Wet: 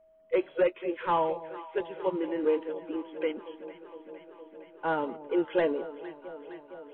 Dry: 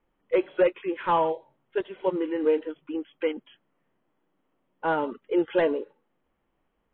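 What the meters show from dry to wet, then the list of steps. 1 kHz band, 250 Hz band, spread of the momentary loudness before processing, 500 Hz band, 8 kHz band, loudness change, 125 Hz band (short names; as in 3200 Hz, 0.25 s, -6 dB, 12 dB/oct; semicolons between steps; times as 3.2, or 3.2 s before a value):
-3.0 dB, -3.0 dB, 10 LU, -3.0 dB, n/a, -3.5 dB, -3.0 dB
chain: echo with dull and thin repeats by turns 0.231 s, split 840 Hz, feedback 86%, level -14 dB; whine 640 Hz -55 dBFS; gain -3.5 dB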